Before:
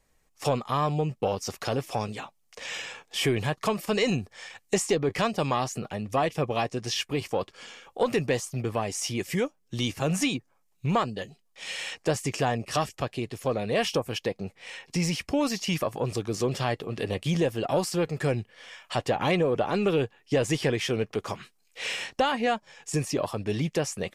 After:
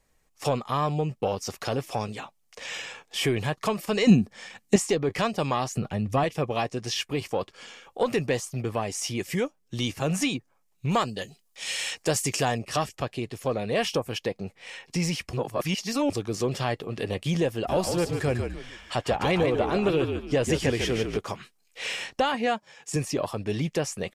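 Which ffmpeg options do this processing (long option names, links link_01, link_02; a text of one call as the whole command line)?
ffmpeg -i in.wav -filter_complex "[0:a]asettb=1/sr,asplit=3[link_01][link_02][link_03];[link_01]atrim=end=4.074[link_04];[link_02]atrim=start=4.07:end=4.76,asetpts=PTS-STARTPTS,afade=type=in:duration=0.004:curve=qsin,afade=type=out:start_time=0.686:duration=0.004:curve=qsin,equalizer=frequency=210:width_type=o:width=1:gain=13.5[link_05];[link_03]atrim=start=4.756[link_06];[link_04][link_05]acrossfade=duration=0.004:curve1=hsin:curve2=qsin[link_07];[link_07][link_06]acrossfade=duration=0.004:curve1=qsin:curve2=hsin,asettb=1/sr,asplit=3[link_08][link_09][link_10];[link_08]atrim=end=5.774[link_11];[link_09]atrim=start=5.77:end=6.24,asetpts=PTS-STARTPTS,afade=type=in:duration=0.004:curve=qsin,afade=type=out:start_time=0.466:duration=0.004:curve=qsin,bass=frequency=250:gain=8,treble=frequency=4000:gain=-1[link_12];[link_10]atrim=start=6.236[link_13];[link_11][link_12]acrossfade=duration=0.004:curve1=hsin:curve2=qsin[link_14];[link_14][link_13]acrossfade=duration=0.004:curve1=qsin:curve2=hsin,asettb=1/sr,asplit=3[link_15][link_16][link_17];[link_15]atrim=end=10.914[link_18];[link_16]atrim=start=10.91:end=12.59,asetpts=PTS-STARTPTS,afade=type=in:duration=0.004:curve=qsin,afade=type=out:start_time=1.676:duration=0.004:curve=qsin,highshelf=frequency=4000:gain=10.5[link_19];[link_17]atrim=start=12.586[link_20];[link_18][link_19]acrossfade=duration=0.004:curve1=hsin:curve2=qsin[link_21];[link_21][link_20]acrossfade=duration=0.004:curve1=qsin:curve2=hsin,asplit=3[link_22][link_23][link_24];[link_22]afade=type=out:start_time=17.67:duration=0.02[link_25];[link_23]asplit=5[link_26][link_27][link_28][link_29][link_30];[link_27]adelay=147,afreqshift=-54,volume=-6dB[link_31];[link_28]adelay=294,afreqshift=-108,volume=-15.6dB[link_32];[link_29]adelay=441,afreqshift=-162,volume=-25.3dB[link_33];[link_30]adelay=588,afreqshift=-216,volume=-34.9dB[link_34];[link_26][link_31][link_32][link_33][link_34]amix=inputs=5:normalize=0,afade=type=in:start_time=17.67:duration=0.02,afade=type=out:start_time=21.17:duration=0.02[link_35];[link_24]afade=type=in:start_time=21.17:duration=0.02[link_36];[link_25][link_35][link_36]amix=inputs=3:normalize=0,asettb=1/sr,asplit=3[link_37][link_38][link_39];[link_37]atrim=end=22.344[link_40];[link_38]atrim=start=22.34:end=22.96,asetpts=PTS-STARTPTS,afade=type=in:duration=0.004:curve=qsin,afade=type=out:start_time=0.616:duration=0.004:curve=qsin,highpass=68[link_41];[link_39]atrim=start=22.956[link_42];[link_40][link_41]acrossfade=duration=0.004:curve1=hsin:curve2=qsin[link_43];[link_43][link_42]acrossfade=duration=0.004:curve1=qsin:curve2=hsin,asplit=3[link_44][link_45][link_46];[link_44]atrim=end=15.332[link_47];[link_45]atrim=start=15.328:end=16.102,asetpts=PTS-STARTPTS,areverse[link_48];[link_46]atrim=start=16.098[link_49];[link_47][link_48]acrossfade=duration=0.004:curve1=hsin:curve2=hsin[link_50];[link_50][link_49]acrossfade=duration=0.004:curve1=hsin:curve2=hsin" out.wav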